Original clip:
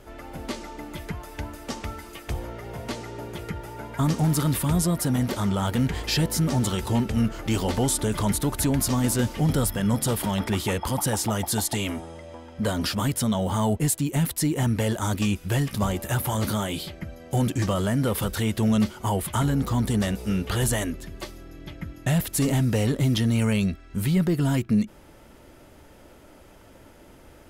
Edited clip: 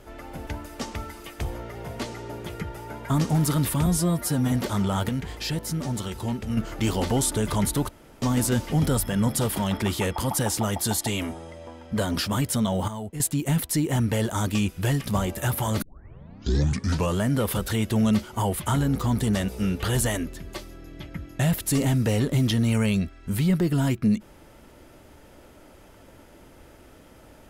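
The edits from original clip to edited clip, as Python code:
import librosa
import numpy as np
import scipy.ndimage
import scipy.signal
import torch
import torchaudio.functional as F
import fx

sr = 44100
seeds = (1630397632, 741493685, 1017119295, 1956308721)

y = fx.edit(x, sr, fx.cut(start_s=0.47, length_s=0.89),
    fx.stretch_span(start_s=4.75, length_s=0.44, factor=1.5),
    fx.clip_gain(start_s=5.76, length_s=1.48, db=-5.5),
    fx.room_tone_fill(start_s=8.56, length_s=0.33),
    fx.clip_gain(start_s=13.55, length_s=0.32, db=-11.0),
    fx.tape_start(start_s=16.49, length_s=1.38), tone=tone)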